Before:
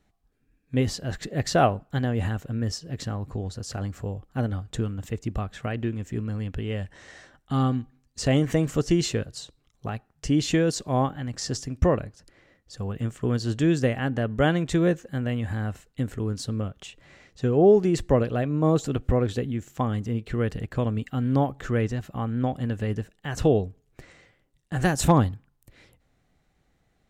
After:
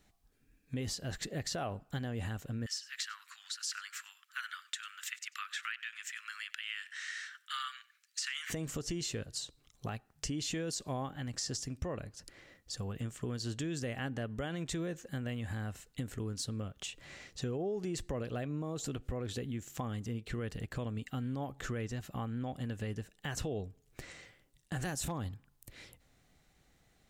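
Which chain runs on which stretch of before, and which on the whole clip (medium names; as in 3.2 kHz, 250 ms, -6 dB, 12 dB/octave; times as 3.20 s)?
2.66–8.50 s: steep high-pass 1.3 kHz 48 dB/octave + peaking EQ 1.8 kHz +8 dB 2.6 oct + delay 94 ms -22.5 dB
whole clip: treble shelf 2.6 kHz +9 dB; peak limiter -16.5 dBFS; compression 2.5:1, threshold -38 dBFS; trim -1.5 dB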